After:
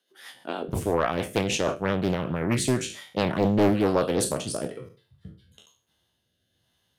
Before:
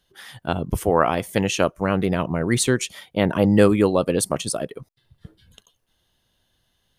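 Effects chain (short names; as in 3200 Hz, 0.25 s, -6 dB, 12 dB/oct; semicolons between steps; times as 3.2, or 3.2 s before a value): spectral trails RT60 0.38 s; HPF 260 Hz 24 dB/oct, from 0.68 s 67 Hz; soft clip -5.5 dBFS, distortion -20 dB; rotary speaker horn 6.3 Hz, later 1.1 Hz, at 1.67; Doppler distortion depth 0.56 ms; gain -2.5 dB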